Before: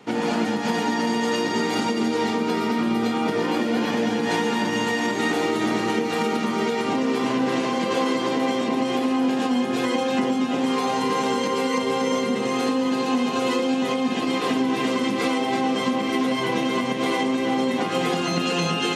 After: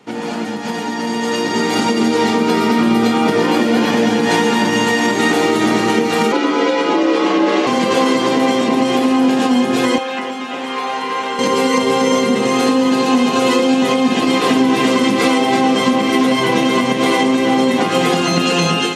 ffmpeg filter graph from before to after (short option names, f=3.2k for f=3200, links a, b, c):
-filter_complex "[0:a]asettb=1/sr,asplit=3[a][b][c];[a]atrim=end=6.324[d];[b]atrim=start=6.32:end=7.67,asetpts=PTS-STARTPTS,afade=t=in:d=0.004:c=qsin,afade=t=out:st=1.346:d=0.004:c=qsin,lowpass=5.3k,afreqshift=65[e];[c]atrim=start=7.666[f];[d][e]acrossfade=d=0.004:c1=hsin:c2=qsin[g];[g][f]acrossfade=d=0.004:c1=qsin:c2=hsin,asettb=1/sr,asplit=3[h][i][j];[h]atrim=end=9.984[k];[i]atrim=start=9.98:end=11.39,asetpts=PTS-STARTPTS,afade=t=in:d=0.004:c=qsin,afade=t=out:st=1.406:d=0.004:c=qsin,acrossover=split=3300[l][m];[m]acompressor=threshold=-51dB:ratio=4:attack=1:release=60[n];[l][n]amix=inputs=2:normalize=0,highpass=f=1.2k:p=1[o];[j]atrim=start=11.386[p];[k][o]acrossfade=d=0.004:c1=hsin:c2=qsin[q];[q][p]acrossfade=d=0.004:c1=qsin:c2=hsin,equalizer=f=10k:w=0.67:g=2.5,dynaudnorm=f=940:g=3:m=11.5dB"